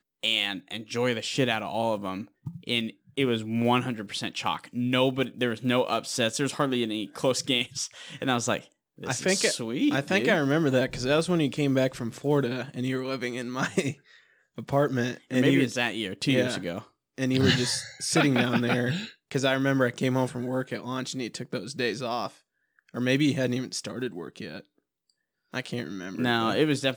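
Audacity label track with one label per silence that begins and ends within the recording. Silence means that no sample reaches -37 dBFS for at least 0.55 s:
13.930000	14.580000	silence
22.270000	22.940000	silence
24.600000	25.540000	silence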